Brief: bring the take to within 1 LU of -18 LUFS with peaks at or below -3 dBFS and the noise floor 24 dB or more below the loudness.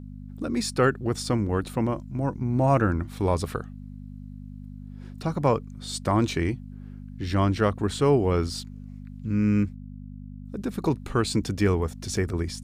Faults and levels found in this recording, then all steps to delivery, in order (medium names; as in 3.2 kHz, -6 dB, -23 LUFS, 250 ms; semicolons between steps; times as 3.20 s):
hum 50 Hz; highest harmonic 250 Hz; hum level -37 dBFS; loudness -26.0 LUFS; peak level -9.0 dBFS; loudness target -18.0 LUFS
-> de-hum 50 Hz, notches 5; trim +8 dB; peak limiter -3 dBFS